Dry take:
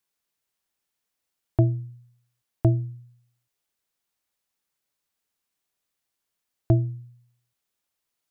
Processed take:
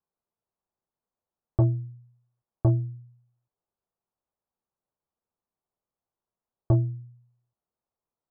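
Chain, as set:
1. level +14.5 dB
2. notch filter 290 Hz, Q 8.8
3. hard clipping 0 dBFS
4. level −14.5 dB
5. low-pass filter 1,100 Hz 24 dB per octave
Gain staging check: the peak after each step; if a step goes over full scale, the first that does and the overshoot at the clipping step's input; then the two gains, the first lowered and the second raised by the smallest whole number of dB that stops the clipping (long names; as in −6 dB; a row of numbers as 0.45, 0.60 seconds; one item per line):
+6.0, +5.5, 0.0, −14.5, −13.5 dBFS
step 1, 5.5 dB
step 1 +8.5 dB, step 4 −8.5 dB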